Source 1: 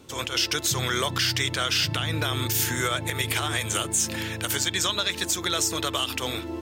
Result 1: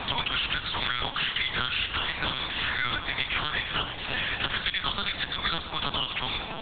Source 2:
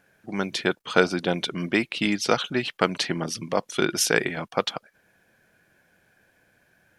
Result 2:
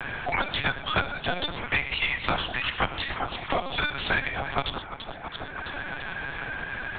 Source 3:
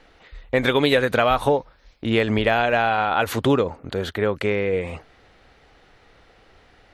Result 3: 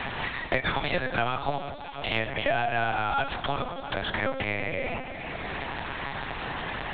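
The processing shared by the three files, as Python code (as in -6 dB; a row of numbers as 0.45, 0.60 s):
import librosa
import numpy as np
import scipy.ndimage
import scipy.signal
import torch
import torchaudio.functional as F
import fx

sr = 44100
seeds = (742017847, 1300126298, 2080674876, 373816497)

y = scipy.signal.sosfilt(scipy.signal.butter(8, 540.0, 'highpass', fs=sr, output='sos'), x)
y = y + 0.45 * np.pad(y, (int(7.3 * sr / 1000.0), 0))[:len(y)]
y = fx.echo_alternate(y, sr, ms=166, hz=830.0, feedback_pct=57, wet_db=-13.0)
y = fx.rev_gated(y, sr, seeds[0], gate_ms=150, shape='flat', drr_db=8.5)
y = fx.lpc_vocoder(y, sr, seeds[1], excitation='pitch_kept', order=8)
y = fx.band_squash(y, sr, depth_pct=100)
y = y * 10.0 ** (-30 / 20.0) / np.sqrt(np.mean(np.square(y)))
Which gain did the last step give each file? -2.0, 0.0, -6.0 dB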